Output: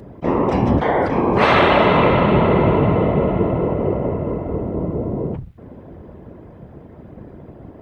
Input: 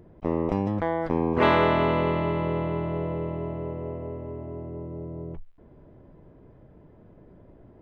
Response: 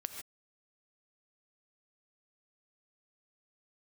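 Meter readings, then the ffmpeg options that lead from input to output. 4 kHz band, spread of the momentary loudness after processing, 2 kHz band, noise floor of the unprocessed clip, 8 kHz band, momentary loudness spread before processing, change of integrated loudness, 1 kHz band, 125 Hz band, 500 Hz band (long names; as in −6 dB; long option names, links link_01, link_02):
+11.0 dB, 11 LU, +10.0 dB, −53 dBFS, can't be measured, 16 LU, +9.5 dB, +10.0 dB, +10.0 dB, +9.5 dB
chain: -af "apsyclip=22.5dB,afftfilt=real='hypot(re,im)*cos(2*PI*random(0))':imag='hypot(re,im)*sin(2*PI*random(1))':win_size=512:overlap=0.75,highpass=46,volume=-3dB"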